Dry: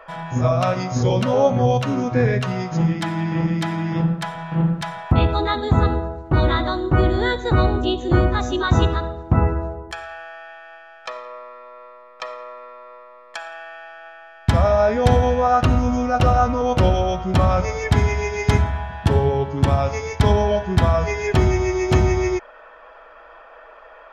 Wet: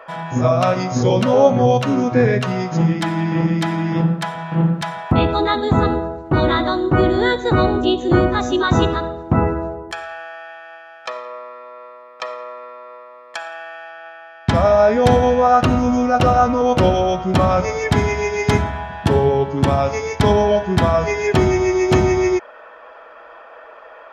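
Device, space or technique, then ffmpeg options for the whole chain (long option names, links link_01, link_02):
filter by subtraction: -filter_complex "[0:a]asettb=1/sr,asplit=3[link_01][link_02][link_03];[link_01]atrim=end=13.904[link_04];[link_02]atrim=start=13.9:end=14.55,asetpts=PTS-STARTPTS,afade=type=in:duration=0.004:curve=qsin,afade=type=out:start_time=0.646:duration=0.004:curve=qsin,lowpass=6900[link_05];[link_03]atrim=start=14.546[link_06];[link_04][link_05]acrossfade=duration=0.004:curve1=hsin:curve2=qsin[link_07];[link_07][link_06]acrossfade=duration=0.004:curve1=qsin:curve2=hsin,asplit=2[link_08][link_09];[link_09]lowpass=250,volume=-1[link_10];[link_08][link_10]amix=inputs=2:normalize=0,volume=3dB"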